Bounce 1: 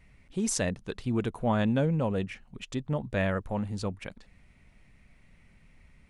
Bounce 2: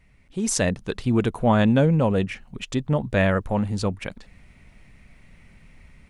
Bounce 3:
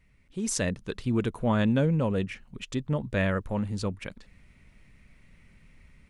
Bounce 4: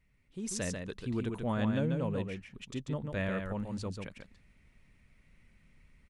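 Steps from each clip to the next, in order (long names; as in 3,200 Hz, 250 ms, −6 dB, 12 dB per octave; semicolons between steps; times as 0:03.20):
automatic gain control gain up to 8 dB
parametric band 750 Hz −6 dB 0.47 octaves; level −5.5 dB
single-tap delay 141 ms −5 dB; level −8 dB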